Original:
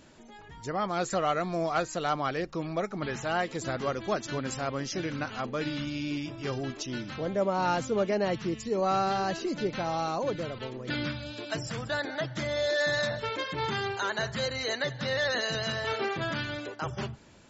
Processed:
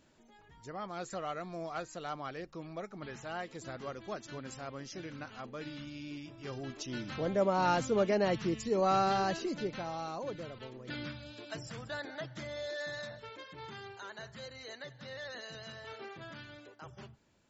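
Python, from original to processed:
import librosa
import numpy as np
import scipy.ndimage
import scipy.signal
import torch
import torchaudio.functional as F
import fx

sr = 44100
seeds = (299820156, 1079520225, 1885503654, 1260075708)

y = fx.gain(x, sr, db=fx.line((6.33, -11.0), (7.2, -1.5), (9.21, -1.5), (9.95, -9.0), (12.18, -9.0), (13.38, -15.5)))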